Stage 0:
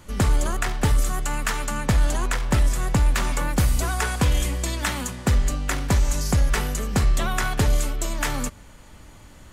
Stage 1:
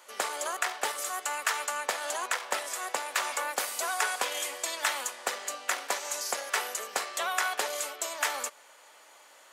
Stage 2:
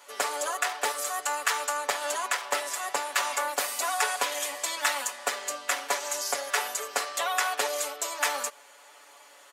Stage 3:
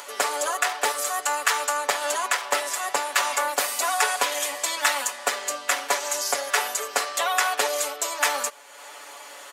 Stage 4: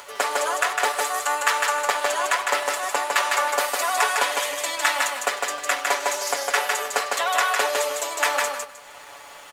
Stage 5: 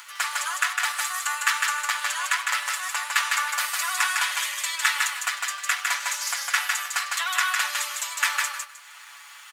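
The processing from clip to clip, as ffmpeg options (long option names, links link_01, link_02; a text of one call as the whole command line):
ffmpeg -i in.wav -af "highpass=frequency=520:width=0.5412,highpass=frequency=520:width=1.3066,volume=-2dB" out.wav
ffmpeg -i in.wav -af "aecho=1:1:7:0.88" out.wav
ffmpeg -i in.wav -af "acompressor=mode=upward:threshold=-38dB:ratio=2.5,volume=4.5dB" out.wav
ffmpeg -i in.wav -af "bass=frequency=250:gain=-5,treble=frequency=4000:gain=-5,aeval=exprs='sgn(val(0))*max(abs(val(0))-0.00282,0)':channel_layout=same,aecho=1:1:155|310|465:0.708|0.149|0.0312,volume=1.5dB" out.wav
ffmpeg -i in.wav -af "highpass=frequency=1200:width=0.5412,highpass=frequency=1200:width=1.3066" out.wav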